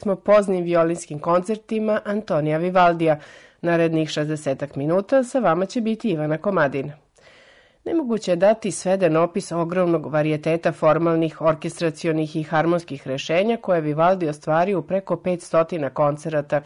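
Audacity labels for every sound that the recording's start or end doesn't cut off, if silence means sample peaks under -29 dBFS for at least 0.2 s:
3.640000	6.910000	sound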